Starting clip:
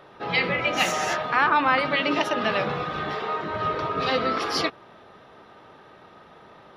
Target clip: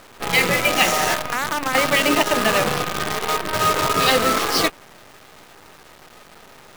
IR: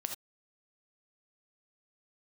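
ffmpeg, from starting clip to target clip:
-filter_complex "[0:a]asettb=1/sr,asplit=3[link_01][link_02][link_03];[link_01]atrim=end=1.134[link_04];[link_02]atrim=start=1.13:end=1.75,asetpts=PTS-STARTPTS,afade=type=in:duration=0.004:curve=qsin,afade=type=out:start_time=0.616:duration=0.004:curve=qsin,acrossover=split=240[link_05][link_06];[link_06]acompressor=threshold=-26dB:ratio=10[link_07];[link_05][link_07]amix=inputs=2:normalize=0[link_08];[link_03]atrim=start=1.746[link_09];[link_04][link_08]acrossfade=duration=0.004:curve1=hsin:curve2=qsin[link_10];[link_10][link_09]acrossfade=duration=0.004:curve1=qsin:curve2=hsin,asettb=1/sr,asplit=3[link_11][link_12][link_13];[link_11]atrim=end=3.534[link_14];[link_12]atrim=start=3.53:end=4.12,asetpts=PTS-STARTPTS,afade=type=in:duration=0.004:curve=qsin,afade=type=out:start_time=0.586:duration=0.004:curve=qsin,highshelf=frequency=2100:gain=7.5[link_15];[link_13]atrim=start=4.116[link_16];[link_14][link_15]acrossfade=duration=0.004:curve1=hsin:curve2=qsin[link_17];[link_17][link_16]acrossfade=duration=0.004:curve1=qsin:curve2=hsin,acrusher=bits=5:dc=4:mix=0:aa=0.000001,volume=5.5dB"

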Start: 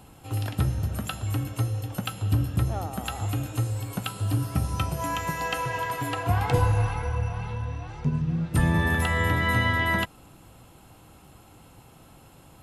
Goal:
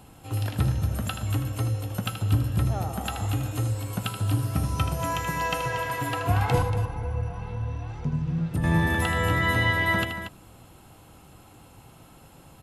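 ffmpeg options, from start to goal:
ffmpeg -i in.wav -filter_complex "[0:a]asettb=1/sr,asplit=3[link_01][link_02][link_03];[link_01]atrim=end=6.624[link_04];[link_02]atrim=start=6.62:end=8.64,asetpts=PTS-STARTPTS,afade=type=in:duration=0.004:curve=qsin,afade=type=out:start_time=2.016:duration=0.004:curve=qsin,acrossover=split=100|730[link_05][link_06][link_07];[link_05]acompressor=threshold=-33dB:ratio=4[link_08];[link_06]acompressor=threshold=-27dB:ratio=4[link_09];[link_07]acompressor=threshold=-48dB:ratio=4[link_10];[link_08][link_09][link_10]amix=inputs=3:normalize=0[link_11];[link_03]atrim=start=8.636[link_12];[link_04][link_11]acrossfade=duration=0.004:curve1=hsin:curve2=qsin[link_13];[link_13][link_12]acrossfade=duration=0.004:curve1=qsin:curve2=hsin,aecho=1:1:78.72|233.2:0.355|0.316" out.wav

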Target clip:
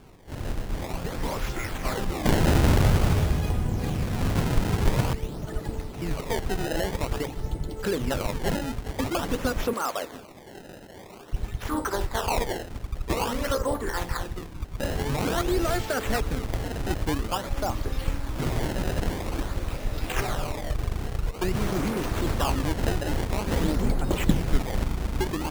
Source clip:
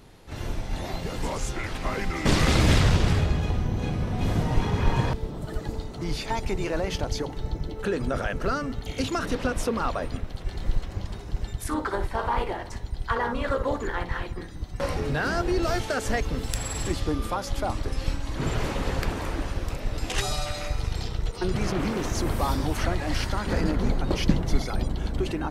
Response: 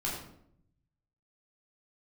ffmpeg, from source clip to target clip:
-filter_complex "[0:a]asettb=1/sr,asplit=3[link_01][link_02][link_03];[link_01]atrim=end=9.734[link_04];[link_02]atrim=start=9.73:end=11.33,asetpts=PTS-STARTPTS,afade=type=in:duration=0.004:curve=qsin,afade=type=out:start_time=1.596:duration=0.004:curve=qsin,highpass=350[link_05];[link_03]atrim=start=11.326[link_06];[link_04][link_05]acrossfade=duration=0.004:curve1=hsin:curve2=qsin[link_07];[link_07][link_06]acrossfade=duration=0.004:curve1=qsin:curve2=hsin,acrusher=samples=22:mix=1:aa=0.000001:lfo=1:lforange=35.2:lforate=0.49"

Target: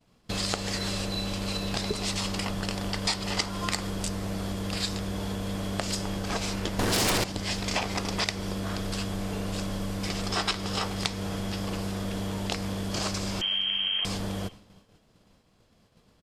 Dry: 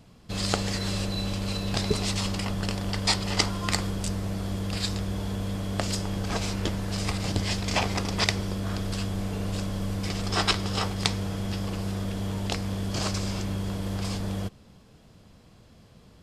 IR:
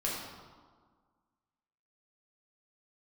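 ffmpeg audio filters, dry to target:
-filter_complex "[0:a]asettb=1/sr,asplit=3[link_01][link_02][link_03];[link_01]atrim=end=6.794[link_04];[link_02]atrim=start=6.79:end=7.24,asetpts=PTS-STARTPTS,afade=type=in:duration=0.004:curve=qsin,afade=type=out:start_time=0.446:duration=0.004:curve=qsin,aeval=exprs='0.251*sin(PI/2*7.94*val(0)/0.251)':channel_layout=same[link_05];[link_03]atrim=start=7.236[link_06];[link_04][link_05]acrossfade=duration=0.004:curve1=hsin:curve2=qsin[link_07];[link_07][link_06]acrossfade=duration=0.004:curve1=qsin:curve2=hsin,asettb=1/sr,asplit=3[link_08][link_09][link_10];[link_08]atrim=end=13.414[link_11];[link_09]atrim=start=13.41:end=14.05,asetpts=PTS-STARTPTS,afade=type=in:duration=0.004:curve=qsin,afade=type=out:start_time=0.636:duration=0.004:curve=qsin,lowpass=frequency=2800:width_type=q:width=0.5098,lowpass=frequency=2800:width_type=q:width=0.6013,lowpass=frequency=2800:width_type=q:width=0.9,lowpass=frequency=2800:width_type=q:width=2.563,afreqshift=-3300[link_12];[link_10]atrim=start=14.046[link_13];[link_11][link_12]acrossfade=duration=0.004:curve1=hsin:curve2=qsin[link_14];[link_14][link_13]acrossfade=duration=0.004:curve1=qsin:curve2=hsin,acompressor=threshold=-34dB:ratio=4,equalizer=frequency=86:width_type=o:width=2.8:gain=-6,asplit=2[link_15][link_16];[link_16]adelay=467,lowpass=frequency=1800:poles=1,volume=-21dB,asplit=2[link_17][link_18];[link_18]adelay=467,lowpass=frequency=1800:poles=1,volume=0.53,asplit=2[link_19][link_20];[link_20]adelay=467,lowpass=frequency=1800:poles=1,volume=0.53,asplit=2[link_21][link_22];[link_22]adelay=467,lowpass=frequency=1800:poles=1,volume=0.53[link_23];[link_15][link_17][link_19][link_21][link_23]amix=inputs=5:normalize=0,agate=range=-33dB:threshold=-46dB:ratio=3:detection=peak,volume=8dB"

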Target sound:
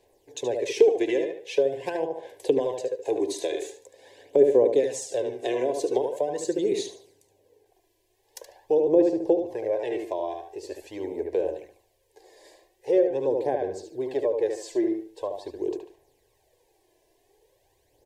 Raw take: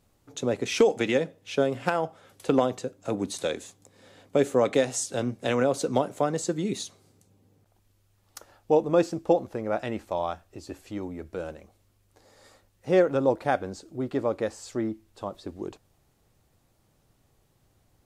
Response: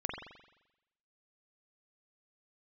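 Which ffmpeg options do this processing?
-filter_complex "[0:a]asplit=2[link_01][link_02];[link_02]adelay=73,lowpass=frequency=4500:poles=1,volume=-5.5dB,asplit=2[link_03][link_04];[link_04]adelay=73,lowpass=frequency=4500:poles=1,volume=0.31,asplit=2[link_05][link_06];[link_06]adelay=73,lowpass=frequency=4500:poles=1,volume=0.31,asplit=2[link_07][link_08];[link_08]adelay=73,lowpass=frequency=4500:poles=1,volume=0.31[link_09];[link_03][link_05][link_07][link_09]amix=inputs=4:normalize=0[link_10];[link_01][link_10]amix=inputs=2:normalize=0,aphaser=in_gain=1:out_gain=1:delay=3:decay=0.48:speed=0.44:type=sinusoidal,asuperstop=centerf=1300:order=8:qfactor=2.6,acrossover=split=390[link_11][link_12];[link_12]acompressor=threshold=-32dB:ratio=6[link_13];[link_11][link_13]amix=inputs=2:normalize=0,lowshelf=frequency=290:width_type=q:width=3:gain=-11.5"

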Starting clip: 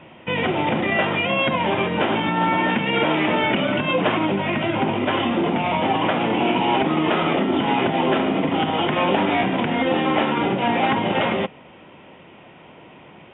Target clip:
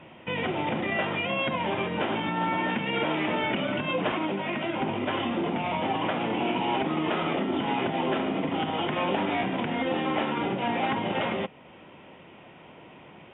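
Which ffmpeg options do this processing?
ffmpeg -i in.wav -filter_complex "[0:a]asettb=1/sr,asplit=3[link_01][link_02][link_03];[link_01]atrim=end=4.124[link_04];[link_02]atrim=start=4.12:end=4.81,asetpts=PTS-STARTPTS,afade=type=in:duration=0.004:curve=qsin,afade=type=out:start_time=0.686:duration=0.004:curve=qsin,highpass=170[link_05];[link_03]atrim=start=4.806[link_06];[link_04][link_05]acrossfade=duration=0.004:curve1=hsin:curve2=qsin[link_07];[link_07][link_06]acrossfade=duration=0.004:curve1=qsin:curve2=hsin,asplit=2[link_08][link_09];[link_09]acompressor=threshold=-34dB:ratio=6,volume=-3dB[link_10];[link_08][link_10]amix=inputs=2:normalize=0,volume=-8.5dB" out.wav

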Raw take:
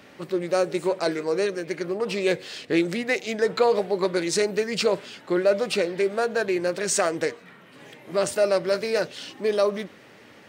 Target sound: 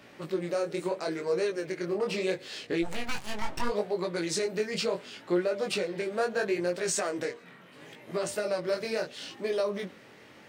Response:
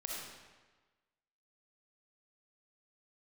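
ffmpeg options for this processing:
-filter_complex "[0:a]asplit=3[link_01][link_02][link_03];[link_01]afade=type=out:start_time=2.82:duration=0.02[link_04];[link_02]aeval=exprs='abs(val(0))':channel_layout=same,afade=type=in:start_time=2.82:duration=0.02,afade=type=out:start_time=3.68:duration=0.02[link_05];[link_03]afade=type=in:start_time=3.68:duration=0.02[link_06];[link_04][link_05][link_06]amix=inputs=3:normalize=0,alimiter=limit=-16.5dB:level=0:latency=1:release=213,flanger=delay=17:depth=6.9:speed=0.74"

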